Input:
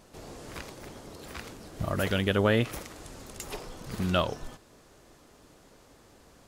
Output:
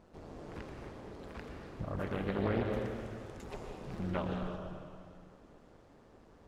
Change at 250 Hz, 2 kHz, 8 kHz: −5.5 dB, −11.5 dB, below −15 dB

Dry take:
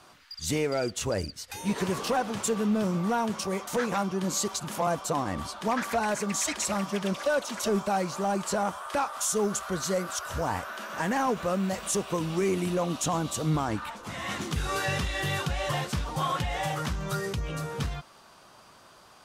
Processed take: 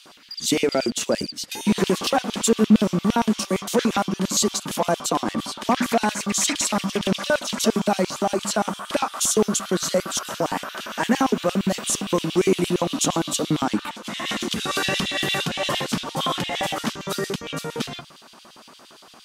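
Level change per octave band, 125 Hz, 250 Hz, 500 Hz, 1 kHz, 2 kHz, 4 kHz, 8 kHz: +2.0, +8.0, +5.5, +4.0, +5.0, +10.5, +7.5 decibels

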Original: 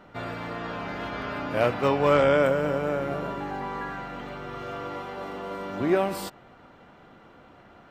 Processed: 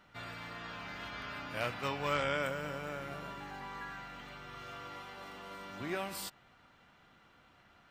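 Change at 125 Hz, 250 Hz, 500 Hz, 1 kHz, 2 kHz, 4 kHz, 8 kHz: −12.0 dB, −15.5 dB, −16.5 dB, −11.0 dB, −7.0 dB, −4.0 dB, can't be measured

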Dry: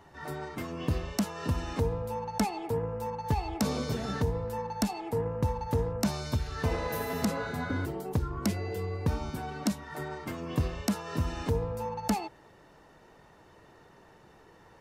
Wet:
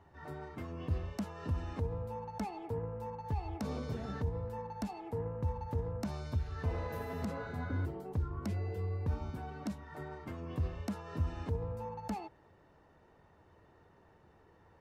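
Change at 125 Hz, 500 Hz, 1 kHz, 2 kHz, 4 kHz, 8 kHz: −4.0, −8.0, −8.5, −10.0, −14.5, −17.5 decibels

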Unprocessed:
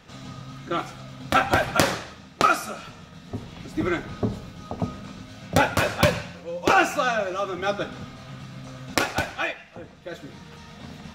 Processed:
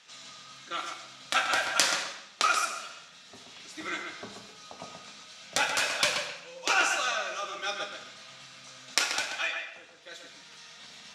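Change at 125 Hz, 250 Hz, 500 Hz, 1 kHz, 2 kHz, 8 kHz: −26.0, −18.5, −12.5, −7.0, −3.0, +3.0 decibels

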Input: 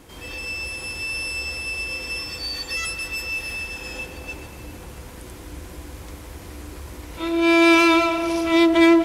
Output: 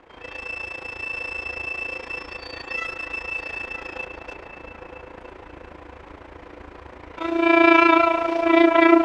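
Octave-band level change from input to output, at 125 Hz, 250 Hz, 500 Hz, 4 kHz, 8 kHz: −8.5 dB, −1.5 dB, +1.5 dB, −7.5 dB, below −15 dB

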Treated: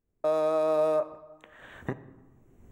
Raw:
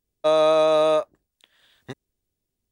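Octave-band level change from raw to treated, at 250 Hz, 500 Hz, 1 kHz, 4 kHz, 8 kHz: −4.5 dB, −7.0 dB, −8.5 dB, below −15 dB, can't be measured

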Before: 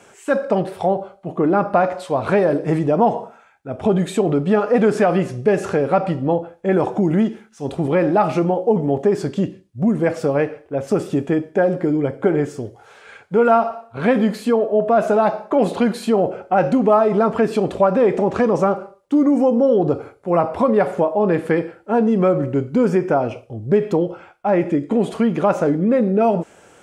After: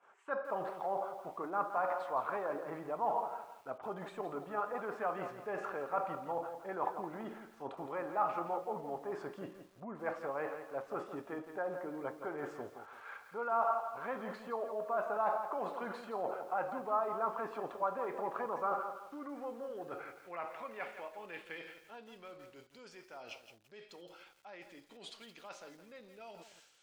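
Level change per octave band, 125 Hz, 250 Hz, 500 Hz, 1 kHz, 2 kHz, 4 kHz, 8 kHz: −32.5 dB, −30.0 dB, −22.5 dB, −14.5 dB, −16.0 dB, below −15 dB, can't be measured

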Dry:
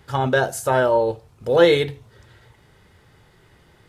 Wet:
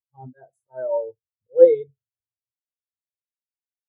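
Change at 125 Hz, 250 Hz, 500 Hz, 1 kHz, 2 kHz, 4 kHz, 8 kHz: below −20 dB, −10.5 dB, −0.5 dB, below −15 dB, below −25 dB, below −35 dB, can't be measured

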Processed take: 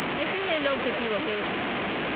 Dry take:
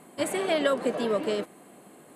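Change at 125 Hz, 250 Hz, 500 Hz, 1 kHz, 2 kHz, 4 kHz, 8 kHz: +6.0 dB, +0.5 dB, −1.5 dB, +4.0 dB, +8.0 dB, +5.0 dB, below −15 dB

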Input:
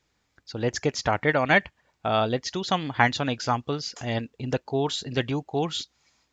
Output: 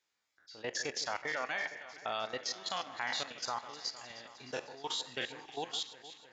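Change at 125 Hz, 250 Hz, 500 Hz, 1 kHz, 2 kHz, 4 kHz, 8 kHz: −28.0 dB, −22.5 dB, −15.5 dB, −13.0 dB, −11.5 dB, −6.0 dB, can't be measured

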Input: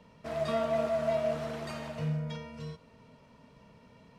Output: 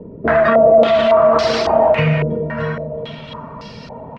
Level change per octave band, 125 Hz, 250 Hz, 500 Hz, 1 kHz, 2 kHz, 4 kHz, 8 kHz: +15.5 dB, +16.5 dB, +20.0 dB, +21.0 dB, +22.5 dB, +20.0 dB, can't be measured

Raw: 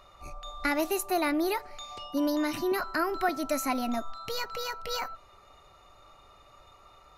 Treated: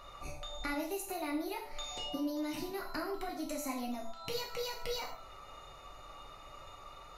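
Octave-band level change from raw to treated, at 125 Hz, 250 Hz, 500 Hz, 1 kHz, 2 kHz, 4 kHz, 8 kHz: −1.5, −8.0, −8.5, −10.0, −10.5, −3.5, −6.0 decibels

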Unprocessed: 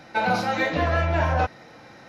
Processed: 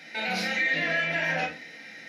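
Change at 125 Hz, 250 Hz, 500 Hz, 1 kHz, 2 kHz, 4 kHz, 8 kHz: −15.0, −7.0, −8.5, −11.0, +2.0, +2.5, +1.0 decibels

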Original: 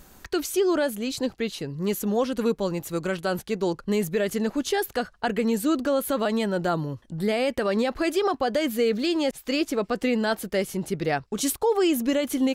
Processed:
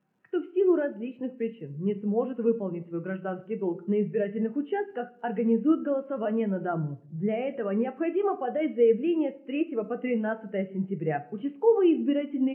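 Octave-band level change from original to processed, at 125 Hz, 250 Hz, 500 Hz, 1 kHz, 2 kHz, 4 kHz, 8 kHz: −2.0 dB, −1.5 dB, −2.0 dB, −5.5 dB, −9.0 dB, below −15 dB, below −40 dB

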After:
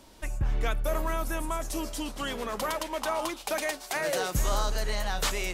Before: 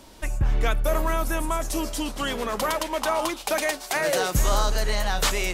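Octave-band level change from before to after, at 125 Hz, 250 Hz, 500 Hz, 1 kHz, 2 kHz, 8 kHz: −5.5, −5.5, −5.5, −5.5, −5.5, −5.5 decibels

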